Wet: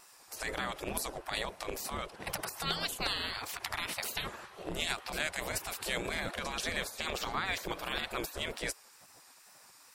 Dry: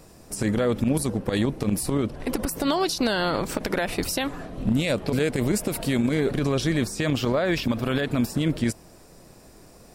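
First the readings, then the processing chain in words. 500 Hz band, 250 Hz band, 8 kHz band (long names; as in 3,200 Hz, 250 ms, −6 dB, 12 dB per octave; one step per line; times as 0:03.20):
−15.0 dB, −22.0 dB, −7.0 dB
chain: gate on every frequency bin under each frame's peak −15 dB weak
tape wow and flutter 58 cents
level −1.5 dB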